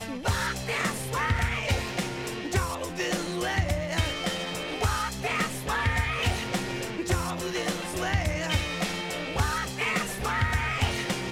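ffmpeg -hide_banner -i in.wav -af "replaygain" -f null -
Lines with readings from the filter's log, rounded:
track_gain = +10.5 dB
track_peak = 0.148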